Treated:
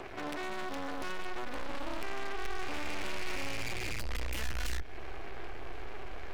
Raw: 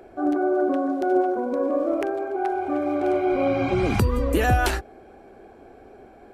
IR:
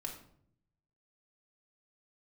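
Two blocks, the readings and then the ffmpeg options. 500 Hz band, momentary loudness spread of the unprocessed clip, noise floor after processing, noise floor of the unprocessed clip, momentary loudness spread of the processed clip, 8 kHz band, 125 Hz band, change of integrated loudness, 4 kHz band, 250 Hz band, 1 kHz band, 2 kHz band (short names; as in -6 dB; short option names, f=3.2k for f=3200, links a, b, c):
-20.5 dB, 5 LU, -38 dBFS, -49 dBFS, 9 LU, -5.5 dB, -16.5 dB, -16.5 dB, -3.0 dB, -20.5 dB, -15.5 dB, -7.5 dB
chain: -filter_complex "[0:a]equalizer=f=125:t=o:w=1:g=8,equalizer=f=250:t=o:w=1:g=-7,equalizer=f=500:t=o:w=1:g=-6,equalizer=f=1k:t=o:w=1:g=-11,equalizer=f=2k:t=o:w=1:g=10,equalizer=f=4k:t=o:w=1:g=5,equalizer=f=8k:t=o:w=1:g=-5,acrossover=split=390|730|1800[a][b][c][d];[b]acompressor=mode=upward:threshold=-45dB:ratio=2.5[e];[a][e][c][d]amix=inputs=4:normalize=0,alimiter=limit=-17dB:level=0:latency=1:release=15,aeval=exprs='max(val(0),0)':c=same,acrossover=split=310|2200[f][g][h];[f]acompressor=threshold=-36dB:ratio=4[i];[g]acompressor=threshold=-44dB:ratio=4[j];[h]acompressor=threshold=-45dB:ratio=4[k];[i][j][k]amix=inputs=3:normalize=0,aeval=exprs='(tanh(224*val(0)+0.65)-tanh(0.65))/224':c=same,asubboost=boost=8:cutoff=55,volume=14dB"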